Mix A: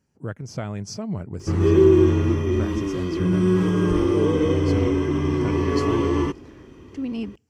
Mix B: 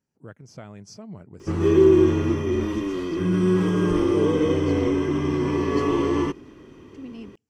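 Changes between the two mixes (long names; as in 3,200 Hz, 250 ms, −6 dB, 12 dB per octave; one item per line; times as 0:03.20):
speech −9.5 dB
master: add parametric band 65 Hz −8.5 dB 1.3 octaves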